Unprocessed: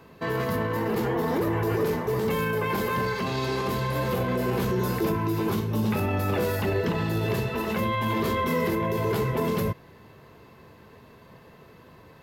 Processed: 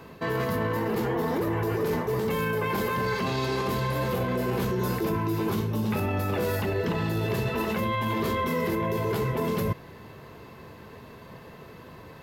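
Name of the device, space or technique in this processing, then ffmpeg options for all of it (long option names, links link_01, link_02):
compression on the reversed sound: -af "areverse,acompressor=threshold=-29dB:ratio=6,areverse,volume=5dB"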